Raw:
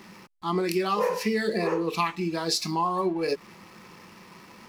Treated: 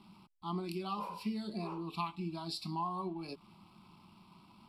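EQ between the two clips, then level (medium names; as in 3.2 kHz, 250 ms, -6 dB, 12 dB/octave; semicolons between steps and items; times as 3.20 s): low-pass 8.3 kHz 12 dB/octave; peaking EQ 1.8 kHz -11 dB 1.5 oct; static phaser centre 1.8 kHz, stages 6; -5.5 dB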